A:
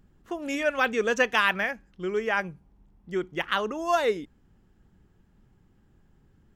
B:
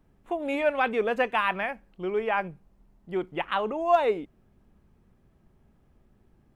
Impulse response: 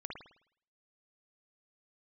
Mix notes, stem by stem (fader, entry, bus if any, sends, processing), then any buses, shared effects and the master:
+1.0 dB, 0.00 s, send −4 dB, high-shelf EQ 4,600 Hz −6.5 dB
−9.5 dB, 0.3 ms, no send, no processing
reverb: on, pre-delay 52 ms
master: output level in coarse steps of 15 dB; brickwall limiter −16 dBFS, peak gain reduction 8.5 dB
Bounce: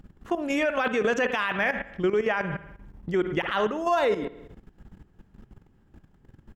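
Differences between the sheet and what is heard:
stem A +1.0 dB → +11.0 dB
stem B −9.5 dB → +2.0 dB

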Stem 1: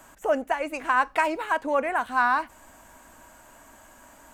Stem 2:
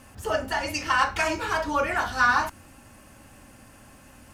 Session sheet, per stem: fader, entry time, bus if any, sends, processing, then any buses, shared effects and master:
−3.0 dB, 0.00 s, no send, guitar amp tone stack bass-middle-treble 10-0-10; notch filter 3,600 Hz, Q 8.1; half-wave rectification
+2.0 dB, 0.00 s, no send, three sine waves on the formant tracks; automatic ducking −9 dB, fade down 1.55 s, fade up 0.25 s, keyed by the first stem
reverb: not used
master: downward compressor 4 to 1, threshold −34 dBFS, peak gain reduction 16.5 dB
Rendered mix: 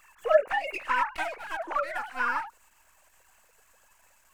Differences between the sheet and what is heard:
stem 2: polarity flipped
master: missing downward compressor 4 to 1, threshold −34 dBFS, peak gain reduction 16.5 dB

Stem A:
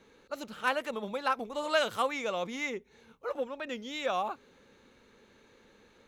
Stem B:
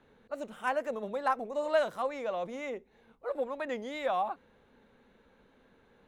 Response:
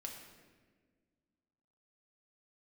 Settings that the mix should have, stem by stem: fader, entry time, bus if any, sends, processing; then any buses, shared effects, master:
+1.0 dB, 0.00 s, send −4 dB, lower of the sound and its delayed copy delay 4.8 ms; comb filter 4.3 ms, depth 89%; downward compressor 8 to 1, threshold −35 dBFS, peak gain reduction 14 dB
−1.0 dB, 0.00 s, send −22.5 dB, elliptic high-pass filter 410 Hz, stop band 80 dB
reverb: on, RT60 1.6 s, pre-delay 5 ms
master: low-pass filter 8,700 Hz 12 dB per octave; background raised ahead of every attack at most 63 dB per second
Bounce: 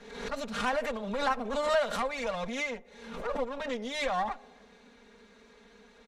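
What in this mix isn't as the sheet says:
stem A: send off
reverb return +10.0 dB

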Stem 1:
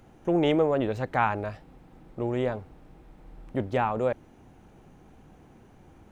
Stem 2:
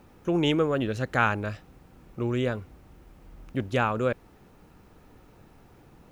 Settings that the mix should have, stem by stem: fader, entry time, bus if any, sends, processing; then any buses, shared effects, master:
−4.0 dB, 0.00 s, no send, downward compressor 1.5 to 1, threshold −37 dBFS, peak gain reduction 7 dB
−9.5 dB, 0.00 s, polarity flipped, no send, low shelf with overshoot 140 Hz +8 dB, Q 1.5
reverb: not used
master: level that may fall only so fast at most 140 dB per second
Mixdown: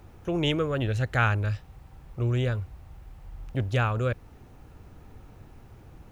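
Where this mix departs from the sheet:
stem 2 −9.5 dB → −0.5 dB
master: missing level that may fall only so fast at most 140 dB per second

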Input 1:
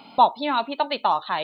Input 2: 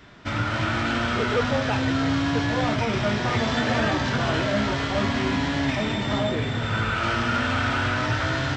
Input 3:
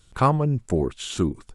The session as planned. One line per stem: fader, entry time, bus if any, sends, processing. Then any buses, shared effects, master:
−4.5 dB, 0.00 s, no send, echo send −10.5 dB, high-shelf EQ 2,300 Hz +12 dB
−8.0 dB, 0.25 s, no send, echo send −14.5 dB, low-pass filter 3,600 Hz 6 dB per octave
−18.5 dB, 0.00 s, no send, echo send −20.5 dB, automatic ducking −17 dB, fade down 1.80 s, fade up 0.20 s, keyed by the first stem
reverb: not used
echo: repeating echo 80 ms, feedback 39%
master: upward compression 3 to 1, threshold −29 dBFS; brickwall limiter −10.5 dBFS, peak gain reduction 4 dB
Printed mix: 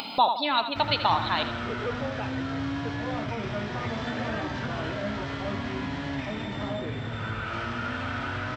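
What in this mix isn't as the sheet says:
stem 2: entry 0.25 s → 0.50 s
stem 3: muted

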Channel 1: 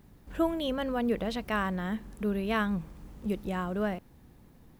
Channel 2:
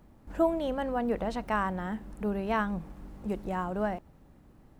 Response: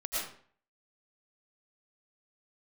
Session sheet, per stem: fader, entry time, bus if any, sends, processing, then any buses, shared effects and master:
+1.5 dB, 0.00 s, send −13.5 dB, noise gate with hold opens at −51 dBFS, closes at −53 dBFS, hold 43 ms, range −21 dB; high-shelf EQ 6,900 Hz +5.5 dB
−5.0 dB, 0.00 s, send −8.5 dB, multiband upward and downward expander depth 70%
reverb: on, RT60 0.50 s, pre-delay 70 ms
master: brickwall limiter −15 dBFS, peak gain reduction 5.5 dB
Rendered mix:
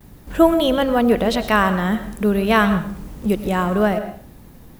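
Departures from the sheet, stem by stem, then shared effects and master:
stem 1 +1.5 dB → +11.0 dB
master: missing brickwall limiter −15 dBFS, peak gain reduction 5.5 dB

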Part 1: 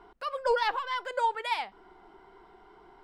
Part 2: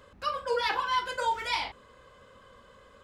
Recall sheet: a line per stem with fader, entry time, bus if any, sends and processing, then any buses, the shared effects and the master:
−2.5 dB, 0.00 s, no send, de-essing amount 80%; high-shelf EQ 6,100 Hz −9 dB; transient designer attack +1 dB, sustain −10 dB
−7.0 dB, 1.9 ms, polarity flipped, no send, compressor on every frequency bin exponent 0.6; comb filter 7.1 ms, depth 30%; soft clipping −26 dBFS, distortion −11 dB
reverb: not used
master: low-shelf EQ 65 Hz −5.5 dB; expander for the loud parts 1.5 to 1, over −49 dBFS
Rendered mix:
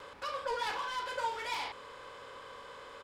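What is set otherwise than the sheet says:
stem 1 −2.5 dB → −11.0 dB
master: missing expander for the loud parts 1.5 to 1, over −49 dBFS

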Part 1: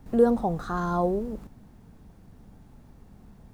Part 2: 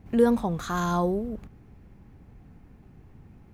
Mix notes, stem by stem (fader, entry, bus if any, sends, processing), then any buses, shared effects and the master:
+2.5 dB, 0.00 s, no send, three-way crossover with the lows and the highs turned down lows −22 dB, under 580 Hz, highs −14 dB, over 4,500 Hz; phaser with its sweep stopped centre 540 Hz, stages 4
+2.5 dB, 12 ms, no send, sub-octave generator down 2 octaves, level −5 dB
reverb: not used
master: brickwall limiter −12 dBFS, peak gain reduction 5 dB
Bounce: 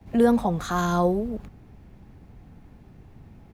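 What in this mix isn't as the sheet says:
stem 2: missing sub-octave generator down 2 octaves, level −5 dB
master: missing brickwall limiter −12 dBFS, peak gain reduction 5 dB

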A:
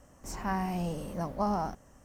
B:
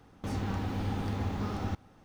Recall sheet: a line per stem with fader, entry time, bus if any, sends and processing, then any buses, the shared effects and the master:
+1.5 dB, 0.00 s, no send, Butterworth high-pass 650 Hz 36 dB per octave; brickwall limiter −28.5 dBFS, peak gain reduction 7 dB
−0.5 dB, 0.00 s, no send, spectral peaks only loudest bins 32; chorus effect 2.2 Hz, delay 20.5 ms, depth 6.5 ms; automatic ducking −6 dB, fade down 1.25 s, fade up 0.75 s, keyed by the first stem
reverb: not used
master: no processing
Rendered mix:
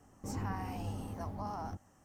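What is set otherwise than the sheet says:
stem A +1.5 dB → −5.5 dB
stem B: polarity flipped

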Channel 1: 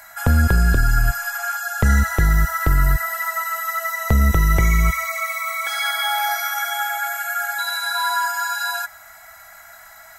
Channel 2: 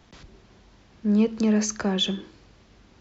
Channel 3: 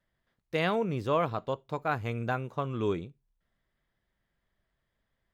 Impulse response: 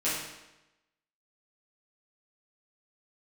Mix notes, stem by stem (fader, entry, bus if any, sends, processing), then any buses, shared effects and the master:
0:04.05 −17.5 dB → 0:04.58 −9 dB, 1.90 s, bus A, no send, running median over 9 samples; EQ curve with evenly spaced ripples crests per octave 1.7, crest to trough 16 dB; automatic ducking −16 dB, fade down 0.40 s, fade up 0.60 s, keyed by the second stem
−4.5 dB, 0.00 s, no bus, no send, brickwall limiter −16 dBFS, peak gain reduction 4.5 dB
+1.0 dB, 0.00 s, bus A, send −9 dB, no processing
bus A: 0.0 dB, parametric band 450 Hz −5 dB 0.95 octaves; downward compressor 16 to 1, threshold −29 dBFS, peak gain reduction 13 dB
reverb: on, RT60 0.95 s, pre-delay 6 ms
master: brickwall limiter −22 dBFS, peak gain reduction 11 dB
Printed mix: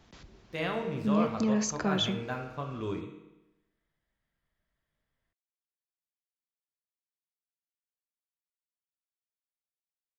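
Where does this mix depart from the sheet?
stem 1: muted
stem 3 +1.0 dB → −7.5 dB
master: missing brickwall limiter −22 dBFS, peak gain reduction 11 dB

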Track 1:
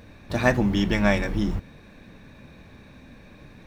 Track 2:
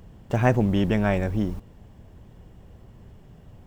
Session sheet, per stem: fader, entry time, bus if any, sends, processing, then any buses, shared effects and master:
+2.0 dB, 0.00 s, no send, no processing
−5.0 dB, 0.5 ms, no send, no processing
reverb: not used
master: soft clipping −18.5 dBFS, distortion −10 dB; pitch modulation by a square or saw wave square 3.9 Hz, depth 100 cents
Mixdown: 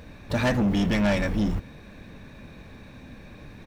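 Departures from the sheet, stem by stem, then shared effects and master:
stem 2: polarity flipped
master: missing pitch modulation by a square or saw wave square 3.9 Hz, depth 100 cents

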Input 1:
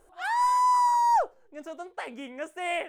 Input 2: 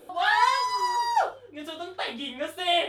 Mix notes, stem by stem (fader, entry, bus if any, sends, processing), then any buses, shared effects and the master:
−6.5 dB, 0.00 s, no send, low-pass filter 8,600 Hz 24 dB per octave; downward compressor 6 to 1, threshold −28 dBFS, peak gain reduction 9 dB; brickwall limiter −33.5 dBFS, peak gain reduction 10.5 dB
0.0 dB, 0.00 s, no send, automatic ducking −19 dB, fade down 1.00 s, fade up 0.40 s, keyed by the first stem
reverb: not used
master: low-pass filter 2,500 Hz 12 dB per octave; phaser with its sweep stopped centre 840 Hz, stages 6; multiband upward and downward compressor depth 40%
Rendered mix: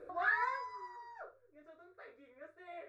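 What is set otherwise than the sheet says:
stem 1 −6.5 dB → −16.5 dB
master: missing multiband upward and downward compressor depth 40%

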